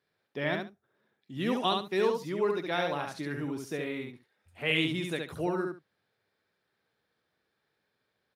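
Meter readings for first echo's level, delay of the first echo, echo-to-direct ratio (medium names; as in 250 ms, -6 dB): -4.0 dB, 69 ms, -4.0 dB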